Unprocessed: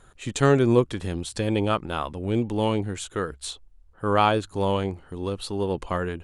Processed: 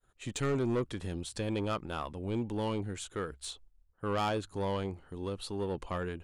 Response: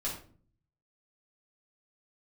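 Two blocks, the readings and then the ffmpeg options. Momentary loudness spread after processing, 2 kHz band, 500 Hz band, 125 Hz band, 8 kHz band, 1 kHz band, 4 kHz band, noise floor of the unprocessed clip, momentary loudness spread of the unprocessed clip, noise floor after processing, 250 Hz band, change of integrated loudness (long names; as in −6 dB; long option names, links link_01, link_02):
9 LU, −10.5 dB, −10.5 dB, −10.0 dB, −7.5 dB, −11.0 dB, −8.5 dB, −54 dBFS, 11 LU, −67 dBFS, −9.5 dB, −10.5 dB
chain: -af "agate=range=-33dB:threshold=-45dB:ratio=3:detection=peak,asoftclip=type=tanh:threshold=-18.5dB,volume=-7dB"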